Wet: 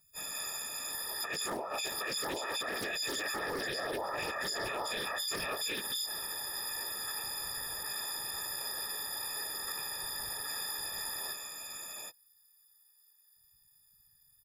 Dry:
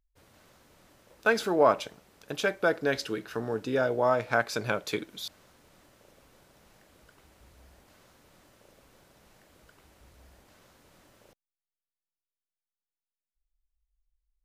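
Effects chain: frequency quantiser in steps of 6 st; tilt shelf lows -4.5 dB, about 650 Hz; on a send: echo 0.766 s -4.5 dB; on the sum: negative-ratio compressor -30 dBFS, ratio -1; whisperiser; limiter -28 dBFS, peak gain reduction 14.5 dB; bell 9300 Hz +3 dB 2 oct; Doppler distortion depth 0.15 ms

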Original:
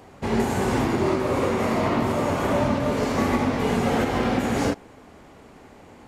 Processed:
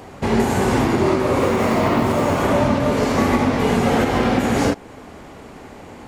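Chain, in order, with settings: in parallel at -0.5 dB: compressor, threshold -31 dBFS, peak gain reduction 13 dB; 1.4–2.43 on the sum: short-mantissa float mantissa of 4-bit; gain +3 dB

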